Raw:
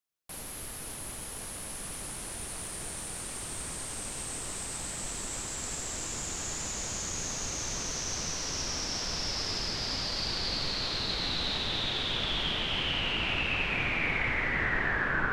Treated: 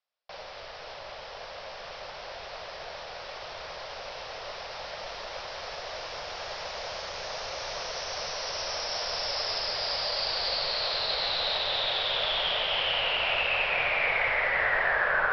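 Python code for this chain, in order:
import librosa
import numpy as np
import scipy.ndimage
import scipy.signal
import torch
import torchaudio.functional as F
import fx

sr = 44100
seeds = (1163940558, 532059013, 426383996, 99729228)

y = scipy.signal.sosfilt(scipy.signal.butter(16, 5500.0, 'lowpass', fs=sr, output='sos'), x)
y = fx.low_shelf_res(y, sr, hz=400.0, db=-12.5, q=3.0)
y = y * librosa.db_to_amplitude(3.0)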